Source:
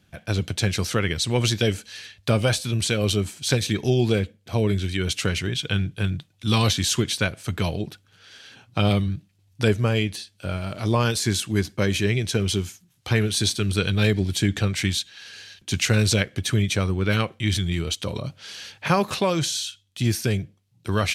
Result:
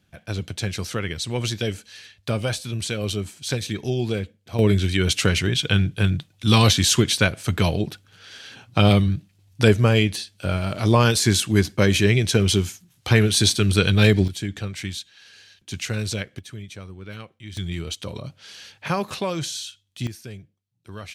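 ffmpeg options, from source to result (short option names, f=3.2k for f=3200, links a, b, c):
-af "asetnsamples=n=441:p=0,asendcmd='4.59 volume volume 4.5dB;14.28 volume volume -7dB;16.39 volume volume -15.5dB;17.57 volume volume -4dB;20.07 volume volume -14.5dB',volume=-4dB"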